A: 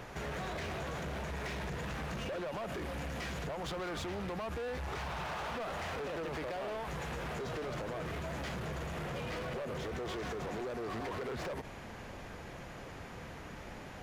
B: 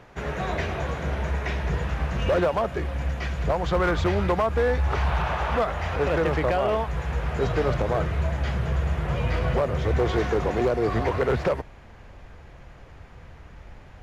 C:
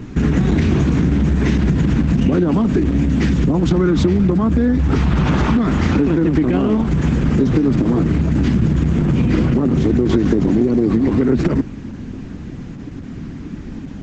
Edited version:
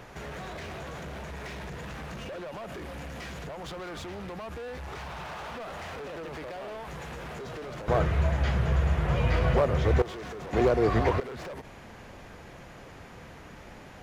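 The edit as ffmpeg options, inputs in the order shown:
-filter_complex "[1:a]asplit=2[a][b];[0:a]asplit=3[c][d][e];[c]atrim=end=7.882[f];[a]atrim=start=7.878:end=10.022[g];[d]atrim=start=10.018:end=10.532[h];[b]atrim=start=10.528:end=11.202[i];[e]atrim=start=11.198[j];[f][g]acrossfade=d=0.004:c1=hsin:c2=hsin[k];[k][h]acrossfade=d=0.004:c1=hsin:c2=hsin[l];[l][i]acrossfade=d=0.004:c1=hsin:c2=hsin[m];[m][j]acrossfade=d=0.004:c1=hsin:c2=hsin"

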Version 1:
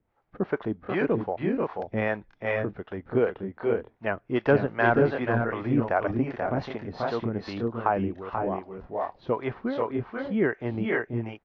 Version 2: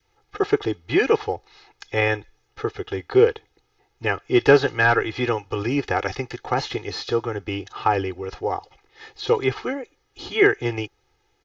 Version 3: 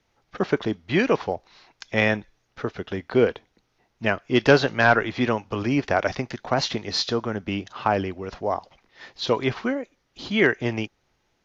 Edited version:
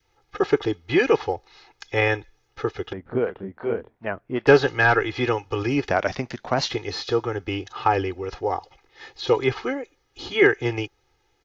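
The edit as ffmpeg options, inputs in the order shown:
-filter_complex "[1:a]asplit=3[a][b][c];[a]atrim=end=2.932[d];[0:a]atrim=start=2.928:end=4.472[e];[b]atrim=start=4.468:end=5.912[f];[2:a]atrim=start=5.908:end=6.702[g];[c]atrim=start=6.698[h];[d][e]acrossfade=d=0.004:c1=hsin:c2=hsin[i];[i][f]acrossfade=d=0.004:c1=hsin:c2=hsin[j];[j][g]acrossfade=d=0.004:c1=hsin:c2=hsin[k];[k][h]acrossfade=d=0.004:c1=hsin:c2=hsin"

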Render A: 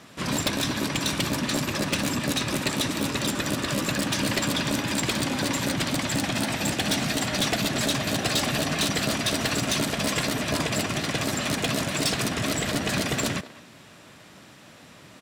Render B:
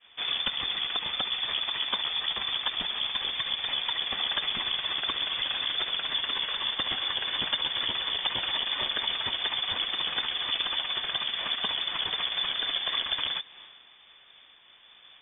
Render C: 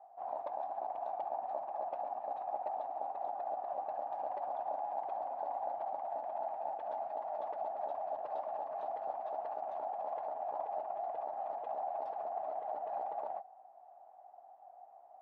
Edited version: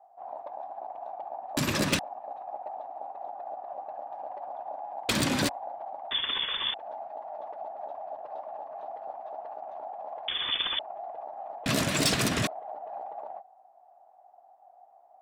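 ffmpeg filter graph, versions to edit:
-filter_complex "[0:a]asplit=3[a][b][c];[1:a]asplit=2[d][e];[2:a]asplit=6[f][g][h][i][j][k];[f]atrim=end=1.572[l];[a]atrim=start=1.568:end=1.992[m];[g]atrim=start=1.988:end=5.092[n];[b]atrim=start=5.088:end=5.492[o];[h]atrim=start=5.488:end=6.112[p];[d]atrim=start=6.108:end=6.742[q];[i]atrim=start=6.738:end=10.282[r];[e]atrim=start=10.278:end=10.792[s];[j]atrim=start=10.788:end=11.662[t];[c]atrim=start=11.658:end=12.472[u];[k]atrim=start=12.468[v];[l][m]acrossfade=d=0.004:c1=hsin:c2=hsin[w];[w][n]acrossfade=d=0.004:c1=hsin:c2=hsin[x];[x][o]acrossfade=d=0.004:c1=hsin:c2=hsin[y];[y][p]acrossfade=d=0.004:c1=hsin:c2=hsin[z];[z][q]acrossfade=d=0.004:c1=hsin:c2=hsin[aa];[aa][r]acrossfade=d=0.004:c1=hsin:c2=hsin[ab];[ab][s]acrossfade=d=0.004:c1=hsin:c2=hsin[ac];[ac][t]acrossfade=d=0.004:c1=hsin:c2=hsin[ad];[ad][u]acrossfade=d=0.004:c1=hsin:c2=hsin[ae];[ae][v]acrossfade=d=0.004:c1=hsin:c2=hsin"

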